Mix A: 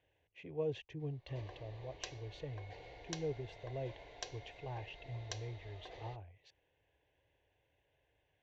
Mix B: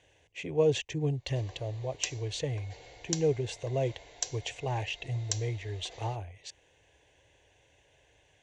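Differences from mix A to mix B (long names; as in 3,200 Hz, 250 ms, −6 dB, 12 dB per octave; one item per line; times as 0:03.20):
speech +11.5 dB
master: remove high-frequency loss of the air 240 metres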